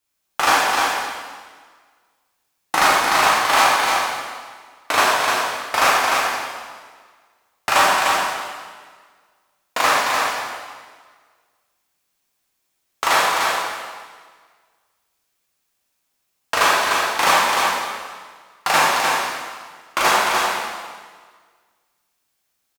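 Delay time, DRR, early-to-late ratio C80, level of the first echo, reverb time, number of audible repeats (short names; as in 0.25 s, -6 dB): 0.3 s, -7.5 dB, -1.5 dB, -5.0 dB, 1.6 s, 1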